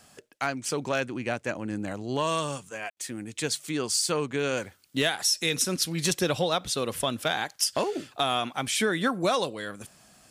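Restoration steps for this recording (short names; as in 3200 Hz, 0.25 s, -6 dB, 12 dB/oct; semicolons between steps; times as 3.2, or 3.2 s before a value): clip repair -14 dBFS; room tone fill 2.9–2.97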